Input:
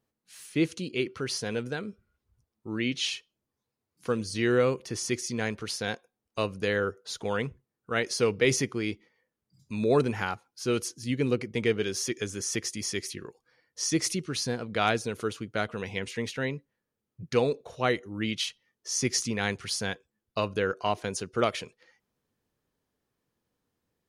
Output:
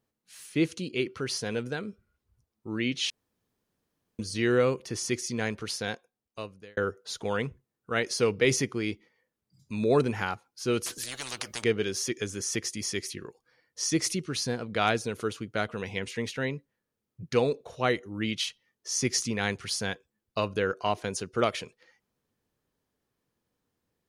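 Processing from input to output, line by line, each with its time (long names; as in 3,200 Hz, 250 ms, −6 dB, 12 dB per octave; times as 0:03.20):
0:03.10–0:04.19: fill with room tone
0:05.75–0:06.77: fade out
0:10.86–0:11.64: every bin compressed towards the loudest bin 10 to 1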